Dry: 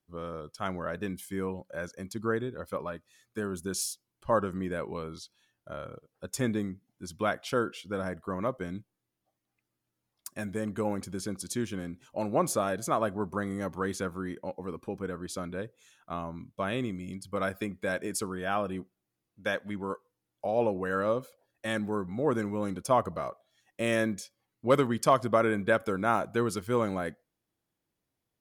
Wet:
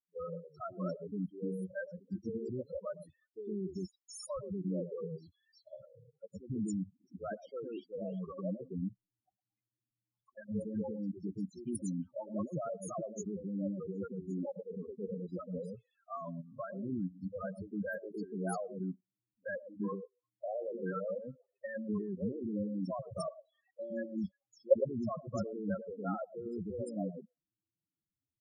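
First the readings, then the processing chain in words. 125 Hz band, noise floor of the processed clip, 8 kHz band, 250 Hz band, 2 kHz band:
-5.5 dB, under -85 dBFS, -13.5 dB, -4.5 dB, -14.5 dB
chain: level held to a coarse grid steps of 19 dB; loudest bins only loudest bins 4; three bands offset in time mids, lows, highs 110/350 ms, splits 420/4200 Hz; trim +5.5 dB

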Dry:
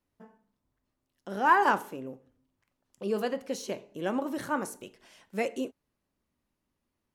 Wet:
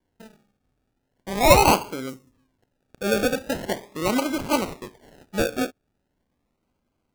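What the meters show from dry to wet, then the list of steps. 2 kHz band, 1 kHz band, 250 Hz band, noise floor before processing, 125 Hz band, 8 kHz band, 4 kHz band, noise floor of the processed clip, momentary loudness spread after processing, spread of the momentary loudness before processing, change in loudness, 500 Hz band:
+4.5 dB, +4.5 dB, +8.5 dB, -83 dBFS, +15.5 dB, +15.5 dB, +15.5 dB, -76 dBFS, 17 LU, 19 LU, +7.5 dB, +9.5 dB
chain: decimation with a swept rate 34×, swing 60% 0.4 Hz; time-frequency box 2.09–2.33 s, 390–5000 Hz -9 dB; trim +7.5 dB

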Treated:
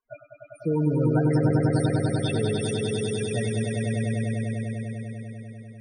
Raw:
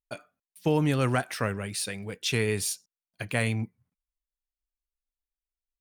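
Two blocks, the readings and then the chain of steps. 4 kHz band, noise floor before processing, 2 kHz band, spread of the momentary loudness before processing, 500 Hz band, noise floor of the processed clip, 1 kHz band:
-2.0 dB, under -85 dBFS, -3.0 dB, 14 LU, +5.0 dB, -53 dBFS, -0.5 dB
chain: crackle 210 per s -53 dBFS; loudest bins only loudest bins 8; echo with a slow build-up 99 ms, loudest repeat 5, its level -4 dB

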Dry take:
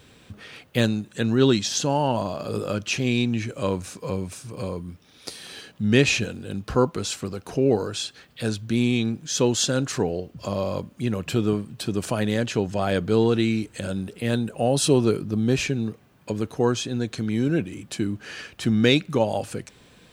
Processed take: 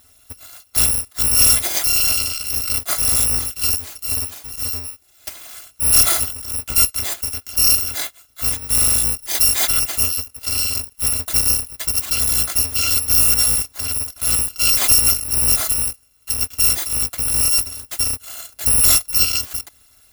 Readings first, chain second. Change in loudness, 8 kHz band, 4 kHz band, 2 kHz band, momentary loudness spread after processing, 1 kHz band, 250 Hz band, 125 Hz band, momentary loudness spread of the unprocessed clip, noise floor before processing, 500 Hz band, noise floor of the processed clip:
+9.0 dB, +16.5 dB, +9.0 dB, +2.0 dB, 12 LU, -2.5 dB, -15.5 dB, -5.5 dB, 14 LU, -55 dBFS, -14.5 dB, -54 dBFS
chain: bit-reversed sample order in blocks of 256 samples; waveshaping leveller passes 1; trim +2 dB

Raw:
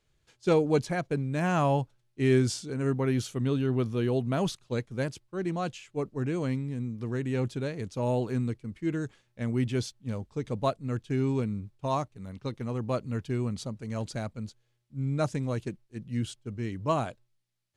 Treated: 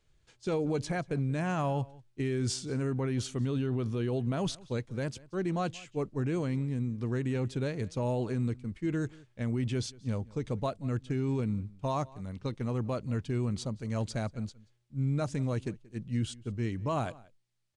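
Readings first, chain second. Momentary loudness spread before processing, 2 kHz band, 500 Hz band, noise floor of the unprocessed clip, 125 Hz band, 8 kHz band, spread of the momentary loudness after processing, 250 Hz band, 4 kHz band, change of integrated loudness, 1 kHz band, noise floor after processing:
10 LU, -3.5 dB, -4.5 dB, -73 dBFS, -1.0 dB, -0.5 dB, 6 LU, -2.5 dB, -1.5 dB, -2.5 dB, -4.0 dB, -67 dBFS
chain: bass shelf 67 Hz +7 dB; peak limiter -22.5 dBFS, peak gain reduction 11 dB; echo from a far wall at 31 m, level -22 dB; resampled via 22.05 kHz

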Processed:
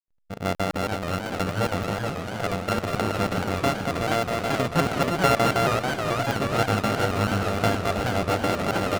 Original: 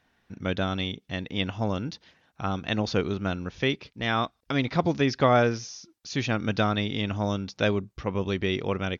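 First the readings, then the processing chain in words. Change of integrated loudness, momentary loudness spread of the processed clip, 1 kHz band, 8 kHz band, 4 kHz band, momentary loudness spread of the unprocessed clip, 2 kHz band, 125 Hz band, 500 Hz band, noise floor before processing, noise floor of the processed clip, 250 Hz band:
+3.0 dB, 7 LU, +6.0 dB, no reading, +1.0 dB, 10 LU, +3.5 dB, +2.5 dB, +3.0 dB, -70 dBFS, -36 dBFS, +0.5 dB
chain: sorted samples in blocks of 64 samples; in parallel at +2 dB: compression, threshold -35 dBFS, peak gain reduction 18 dB; on the sum: treble shelf 4.2 kHz -9.5 dB; on a send: delay 246 ms -3 dB; on the sum: hysteresis with a dead band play -46 dBFS; crackling interface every 0.16 s, samples 2048, zero, from 0.55 s; modulated delay 434 ms, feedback 73%, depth 195 cents, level -6 dB

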